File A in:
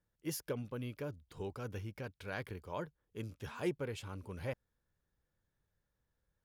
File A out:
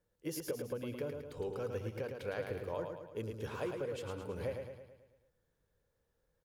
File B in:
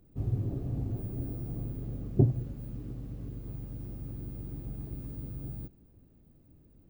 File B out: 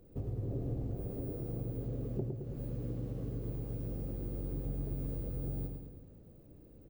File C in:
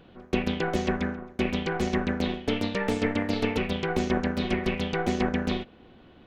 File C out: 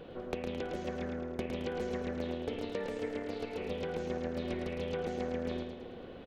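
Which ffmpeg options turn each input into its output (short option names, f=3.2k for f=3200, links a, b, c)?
-filter_complex "[0:a]equalizer=f=490:w=2.2:g=11,bandreject=f=63.21:t=h:w=4,bandreject=f=126.42:t=h:w=4,bandreject=f=189.63:t=h:w=4,bandreject=f=252.84:t=h:w=4,bandreject=f=316.05:t=h:w=4,bandreject=f=379.26:t=h:w=4,bandreject=f=442.47:t=h:w=4,acompressor=threshold=-36dB:ratio=12,asplit=2[a][b];[b]aecho=0:1:109|218|327|436|545|654|763:0.531|0.281|0.149|0.079|0.0419|0.0222|0.0118[c];[a][c]amix=inputs=2:normalize=0,volume=1dB"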